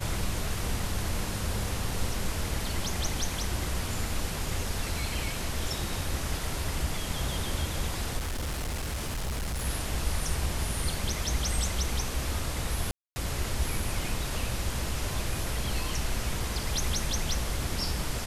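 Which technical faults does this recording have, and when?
8.17–9.66 s: clipped -28.5 dBFS
12.91–13.16 s: dropout 250 ms

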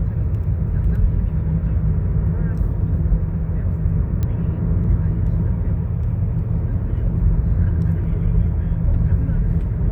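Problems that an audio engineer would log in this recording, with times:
4.23 s: pop -13 dBFS

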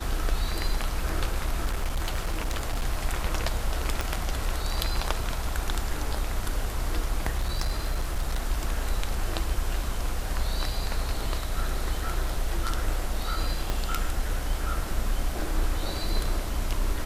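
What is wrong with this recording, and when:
1.65–2.85 s: clipped -23 dBFS
4.01 s: pop
7.38–8.39 s: clipped -22 dBFS
13.70 s: pop -14 dBFS

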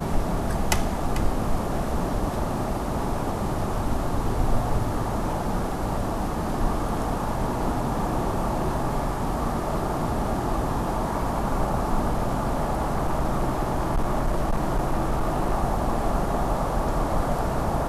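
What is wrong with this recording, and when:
12.11–15.54 s: clipped -18 dBFS

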